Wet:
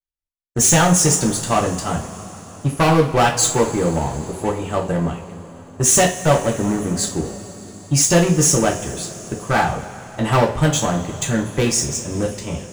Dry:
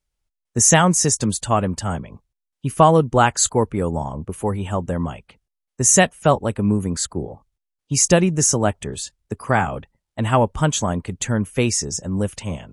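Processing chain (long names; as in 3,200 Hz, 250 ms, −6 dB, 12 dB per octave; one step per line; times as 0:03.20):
gain into a clipping stage and back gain 14.5 dB
power curve on the samples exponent 1.4
coupled-rooms reverb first 0.32 s, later 4.8 s, from −21 dB, DRR −0.5 dB
level +1.5 dB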